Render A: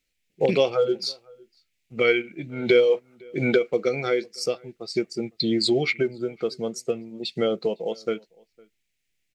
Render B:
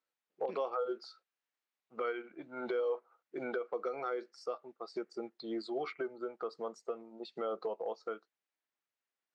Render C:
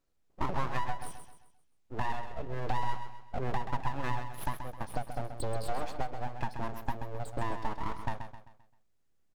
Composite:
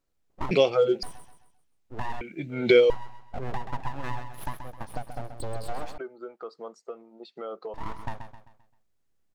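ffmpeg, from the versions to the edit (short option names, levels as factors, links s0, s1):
-filter_complex "[0:a]asplit=2[s0][s1];[2:a]asplit=4[s2][s3][s4][s5];[s2]atrim=end=0.512[s6];[s0]atrim=start=0.508:end=1.032[s7];[s3]atrim=start=1.028:end=2.212[s8];[s1]atrim=start=2.208:end=2.902[s9];[s4]atrim=start=2.898:end=5.982[s10];[1:a]atrim=start=5.978:end=7.742[s11];[s5]atrim=start=7.738[s12];[s6][s7]acrossfade=d=0.004:c1=hsin:c2=hsin[s13];[s13][s8]acrossfade=d=0.004:c1=hsin:c2=hsin[s14];[s14][s9]acrossfade=d=0.004:c1=hsin:c2=hsin[s15];[s15][s10]acrossfade=d=0.004:c1=hsin:c2=hsin[s16];[s16][s11]acrossfade=d=0.004:c1=hsin:c2=hsin[s17];[s17][s12]acrossfade=d=0.004:c1=hsin:c2=hsin"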